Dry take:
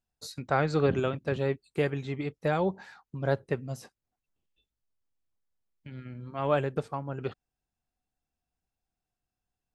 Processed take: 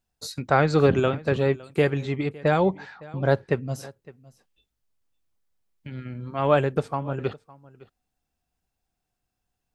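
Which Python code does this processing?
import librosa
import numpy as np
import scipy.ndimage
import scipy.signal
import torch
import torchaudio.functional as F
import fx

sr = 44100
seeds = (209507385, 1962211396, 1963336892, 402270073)

y = fx.env_lowpass(x, sr, base_hz=2000.0, full_db=-23.5, at=(2.29, 3.72))
y = y + 10.0 ** (-21.5 / 20.0) * np.pad(y, (int(560 * sr / 1000.0), 0))[:len(y)]
y = y * librosa.db_to_amplitude(6.5)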